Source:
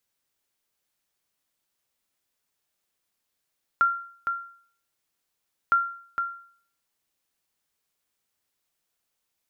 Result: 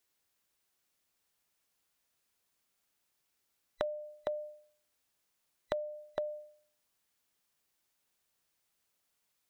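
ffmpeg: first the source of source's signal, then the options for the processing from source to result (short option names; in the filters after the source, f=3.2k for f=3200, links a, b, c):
-f lavfi -i "aevalsrc='0.211*(sin(2*PI*1380*mod(t,1.91))*exp(-6.91*mod(t,1.91)/0.53)+0.447*sin(2*PI*1380*max(mod(t,1.91)-0.46,0))*exp(-6.91*max(mod(t,1.91)-0.46,0)/0.53))':d=3.82:s=44100"
-af "afftfilt=real='real(if(between(b,1,1012),(2*floor((b-1)/92)+1)*92-b,b),0)':imag='imag(if(between(b,1,1012),(2*floor((b-1)/92)+1)*92-b,b),0)*if(between(b,1,1012),-1,1)':win_size=2048:overlap=0.75,acompressor=threshold=-32dB:ratio=16"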